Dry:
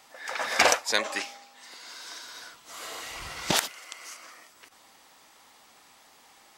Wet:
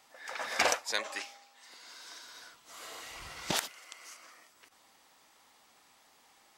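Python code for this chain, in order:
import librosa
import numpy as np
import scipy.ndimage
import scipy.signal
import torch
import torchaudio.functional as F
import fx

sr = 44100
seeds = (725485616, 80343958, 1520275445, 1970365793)

y = fx.highpass(x, sr, hz=390.0, slope=6, at=(0.92, 1.69))
y = y * 10.0 ** (-7.0 / 20.0)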